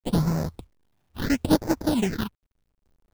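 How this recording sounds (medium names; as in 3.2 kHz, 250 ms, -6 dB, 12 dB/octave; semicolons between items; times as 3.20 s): aliases and images of a low sample rate 1.2 kHz, jitter 20%; phasing stages 6, 0.73 Hz, lowest notch 440–3100 Hz; a quantiser's noise floor 12-bit, dither none; random-step tremolo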